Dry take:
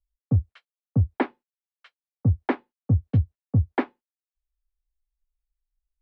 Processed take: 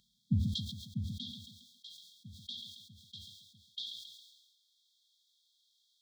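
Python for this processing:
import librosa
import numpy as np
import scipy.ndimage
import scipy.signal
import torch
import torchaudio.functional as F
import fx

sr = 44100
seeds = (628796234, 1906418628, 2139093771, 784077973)

y = fx.bin_compress(x, sr, power=0.6)
y = fx.filter_sweep_highpass(y, sr, from_hz=370.0, to_hz=3200.0, start_s=0.34, end_s=3.78, q=1.4)
y = fx.brickwall_bandstop(y, sr, low_hz=230.0, high_hz=3200.0)
y = fx.echo_feedback(y, sr, ms=136, feedback_pct=53, wet_db=-20.5)
y = fx.sustainer(y, sr, db_per_s=44.0)
y = y * librosa.db_to_amplitude(6.5)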